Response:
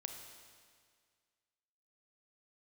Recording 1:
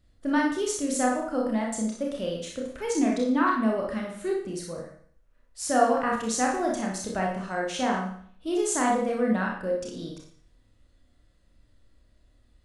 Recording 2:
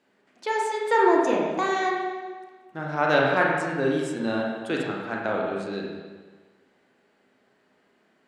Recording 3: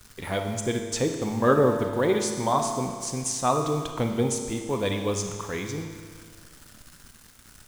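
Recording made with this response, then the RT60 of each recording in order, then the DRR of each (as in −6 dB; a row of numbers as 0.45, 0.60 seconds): 3; 0.55, 1.4, 1.9 seconds; −2.0, −2.5, 4.0 decibels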